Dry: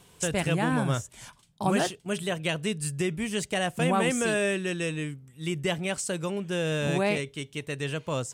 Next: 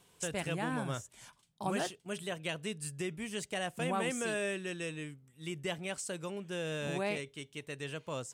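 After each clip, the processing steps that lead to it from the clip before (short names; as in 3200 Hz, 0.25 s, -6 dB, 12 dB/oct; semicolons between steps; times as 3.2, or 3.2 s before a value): low shelf 160 Hz -6.5 dB; gain -8 dB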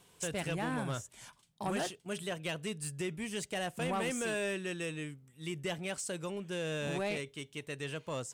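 soft clip -30 dBFS, distortion -16 dB; gain +2 dB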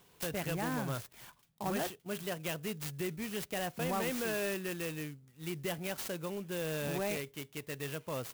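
clock jitter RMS 0.048 ms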